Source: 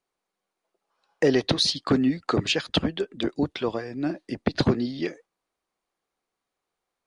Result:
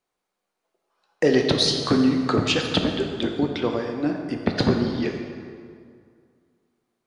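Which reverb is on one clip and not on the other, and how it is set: plate-style reverb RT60 2.2 s, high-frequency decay 0.65×, DRR 2.5 dB; gain +1 dB

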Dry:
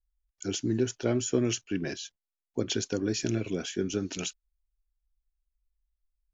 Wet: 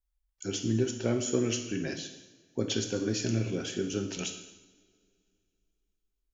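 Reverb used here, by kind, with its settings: two-slope reverb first 0.9 s, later 2.8 s, from -22 dB, DRR 4 dB; gain -2 dB

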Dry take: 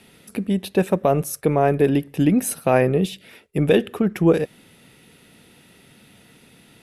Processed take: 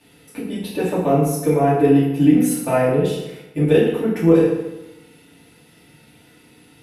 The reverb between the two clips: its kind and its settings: FDN reverb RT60 0.98 s, low-frequency decay 1×, high-frequency decay 0.75×, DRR -9 dB; gain -9 dB

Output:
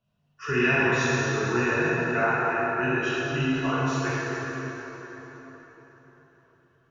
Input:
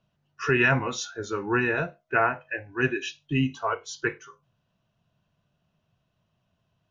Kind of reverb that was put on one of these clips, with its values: plate-style reverb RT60 4.4 s, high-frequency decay 0.7×, DRR -9.5 dB; gain -8 dB

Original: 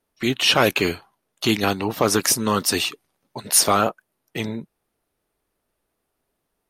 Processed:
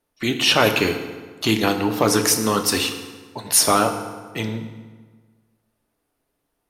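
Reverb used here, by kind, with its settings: FDN reverb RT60 1.5 s, low-frequency decay 1.05×, high-frequency decay 0.7×, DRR 5.5 dB

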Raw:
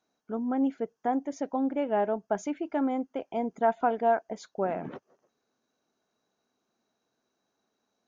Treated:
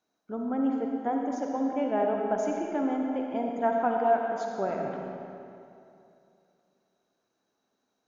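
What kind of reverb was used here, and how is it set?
digital reverb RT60 2.7 s, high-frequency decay 0.75×, pre-delay 20 ms, DRR 0.5 dB; gain -2 dB

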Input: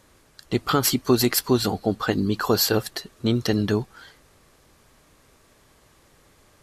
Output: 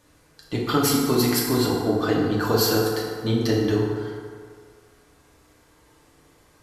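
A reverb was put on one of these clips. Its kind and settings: FDN reverb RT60 2 s, low-frequency decay 0.75×, high-frequency decay 0.5×, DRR -4 dB; gain -5 dB

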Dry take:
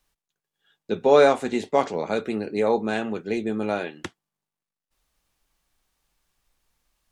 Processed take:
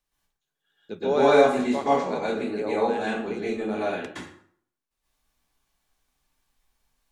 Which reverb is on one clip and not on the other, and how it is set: plate-style reverb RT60 0.58 s, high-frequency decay 0.75×, pre-delay 0.105 s, DRR -9 dB; gain -10 dB

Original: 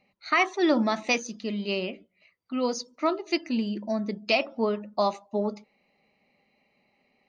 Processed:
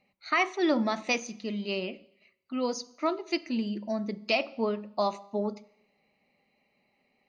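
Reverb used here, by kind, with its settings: Schroeder reverb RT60 0.81 s, combs from 31 ms, DRR 19.5 dB; gain -3 dB

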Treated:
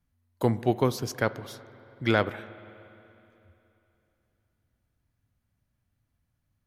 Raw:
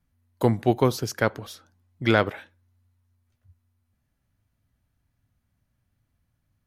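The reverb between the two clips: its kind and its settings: spring tank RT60 3.1 s, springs 47/60 ms, chirp 45 ms, DRR 16 dB; gain -3.5 dB

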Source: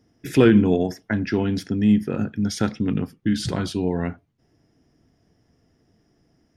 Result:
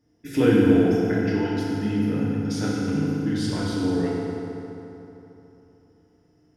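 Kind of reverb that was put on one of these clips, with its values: FDN reverb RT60 3.3 s, high-frequency decay 0.65×, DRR -6.5 dB; gain -9 dB

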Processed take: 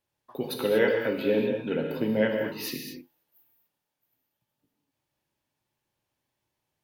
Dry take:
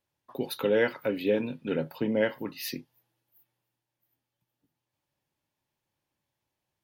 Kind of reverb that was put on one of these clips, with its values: non-linear reverb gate 0.26 s flat, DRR 2 dB

